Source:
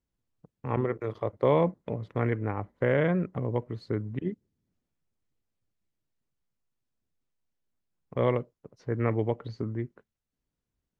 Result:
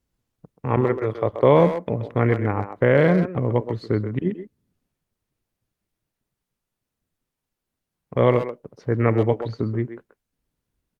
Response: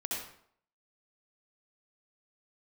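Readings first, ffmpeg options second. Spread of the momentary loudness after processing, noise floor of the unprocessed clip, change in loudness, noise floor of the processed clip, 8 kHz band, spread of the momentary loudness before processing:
12 LU, below −85 dBFS, +8.0 dB, −84 dBFS, can't be measured, 12 LU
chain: -filter_complex "[0:a]asplit=2[link_01][link_02];[link_02]adelay=130,highpass=300,lowpass=3400,asoftclip=type=hard:threshold=-20.5dB,volume=-8dB[link_03];[link_01][link_03]amix=inputs=2:normalize=0,volume=8dB" -ar 48000 -c:a libopus -b:a 48k

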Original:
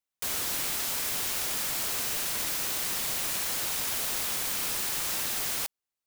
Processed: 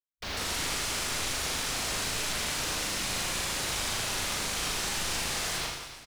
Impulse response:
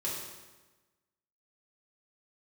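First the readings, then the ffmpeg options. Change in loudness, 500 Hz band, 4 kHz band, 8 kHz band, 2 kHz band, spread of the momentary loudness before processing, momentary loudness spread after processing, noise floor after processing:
−2.0 dB, +3.5 dB, +2.5 dB, −1.0 dB, +3.5 dB, 0 LU, 1 LU, −48 dBFS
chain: -filter_complex "[0:a]acrossover=split=8300[link_01][link_02];[link_02]acompressor=threshold=-37dB:ratio=4:attack=1:release=60[link_03];[link_01][link_03]amix=inputs=2:normalize=0,lowshelf=frequency=74:gain=11,afwtdn=0.01,asplit=2[link_04][link_05];[link_05]adelay=38,volume=-3dB[link_06];[link_04][link_06]amix=inputs=2:normalize=0,aecho=1:1:80|176|291.2|429.4|595.3:0.631|0.398|0.251|0.158|0.1"

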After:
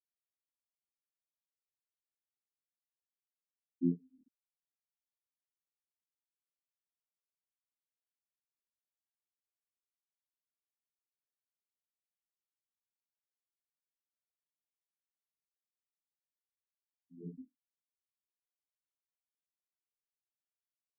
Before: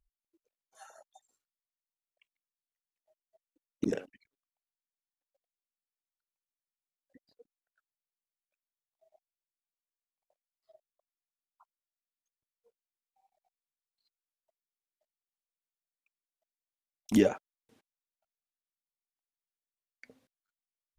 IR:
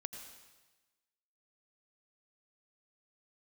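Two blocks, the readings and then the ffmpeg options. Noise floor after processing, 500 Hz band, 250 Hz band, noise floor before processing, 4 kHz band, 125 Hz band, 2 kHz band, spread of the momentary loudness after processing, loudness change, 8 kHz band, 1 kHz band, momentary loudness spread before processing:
below −85 dBFS, −19.0 dB, −7.5 dB, below −85 dBFS, below −25 dB, −2.5 dB, below −35 dB, 19 LU, −8.0 dB, below −25 dB, below −35 dB, 13 LU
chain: -filter_complex "[0:a]equalizer=frequency=150:width=0.35:gain=12,bandreject=frequency=50:width_type=h:width=6,bandreject=frequency=100:width_type=h:width=6,bandreject=frequency=150:width_type=h:width=6,bandreject=frequency=200:width_type=h:width=6,bandreject=frequency=250:width_type=h:width=6,bandreject=frequency=300:width_type=h:width=6,bandreject=frequency=350:width_type=h:width=6,bandreject=frequency=400:width_type=h:width=6,asplit=2[link_01][link_02];[link_02]adelay=23,volume=-12dB[link_03];[link_01][link_03]amix=inputs=2:normalize=0,asplit=2[link_04][link_05];[1:a]atrim=start_sample=2205[link_06];[link_05][link_06]afir=irnorm=-1:irlink=0,volume=1.5dB[link_07];[link_04][link_07]amix=inputs=2:normalize=0,acompressor=threshold=-23dB:ratio=5,asoftclip=type=tanh:threshold=-20dB,afftfilt=real='hypot(re,im)*cos(PI*b)':imag='0':win_size=2048:overlap=0.75,acrossover=split=310[link_08][link_09];[link_09]acompressor=threshold=-42dB:ratio=3[link_10];[link_08][link_10]amix=inputs=2:normalize=0,afftfilt=real='re*gte(hypot(re,im),0.1)':imag='im*gte(hypot(re,im),0.1)':win_size=1024:overlap=0.75,equalizer=frequency=1500:width=0.46:gain=-13,aecho=1:1:23|75:0.668|0.211,aeval=exprs='val(0)*pow(10,-28*(0.5-0.5*cos(2*PI*2.3*n/s))/20)':channel_layout=same,volume=4dB"

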